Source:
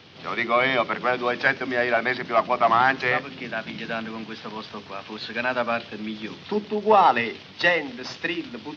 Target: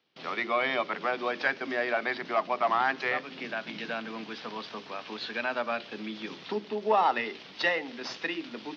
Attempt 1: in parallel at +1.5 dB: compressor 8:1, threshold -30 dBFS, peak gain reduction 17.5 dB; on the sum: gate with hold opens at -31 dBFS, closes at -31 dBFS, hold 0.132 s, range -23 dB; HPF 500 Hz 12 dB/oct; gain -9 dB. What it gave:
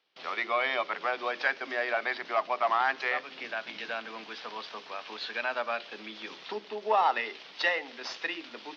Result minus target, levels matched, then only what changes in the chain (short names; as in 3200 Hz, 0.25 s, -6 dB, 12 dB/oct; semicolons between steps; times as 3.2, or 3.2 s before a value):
250 Hz band -8.0 dB
change: HPF 220 Hz 12 dB/oct